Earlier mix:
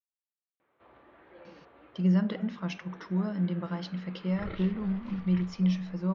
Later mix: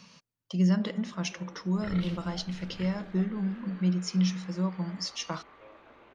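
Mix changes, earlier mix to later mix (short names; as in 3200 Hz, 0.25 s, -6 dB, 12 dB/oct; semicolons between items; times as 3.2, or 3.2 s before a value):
speech: entry -1.45 s; second sound: entry -2.55 s; master: remove air absorption 230 m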